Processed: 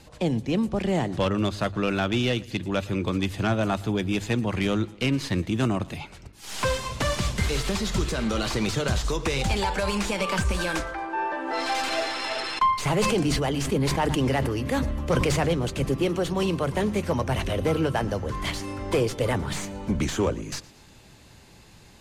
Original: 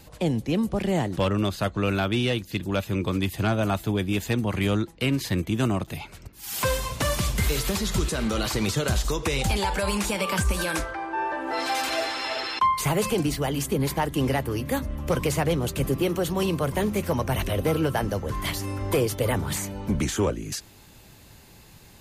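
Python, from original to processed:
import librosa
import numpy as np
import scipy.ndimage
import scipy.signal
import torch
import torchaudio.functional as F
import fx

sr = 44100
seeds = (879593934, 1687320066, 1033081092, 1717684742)

y = fx.tracing_dist(x, sr, depth_ms=0.068)
y = scipy.signal.sosfilt(scipy.signal.butter(2, 8400.0, 'lowpass', fs=sr, output='sos'), y)
y = fx.hum_notches(y, sr, base_hz=50, count=3)
y = fx.echo_feedback(y, sr, ms=114, feedback_pct=48, wet_db=-22.0)
y = fx.sustainer(y, sr, db_per_s=24.0, at=(12.82, 15.49))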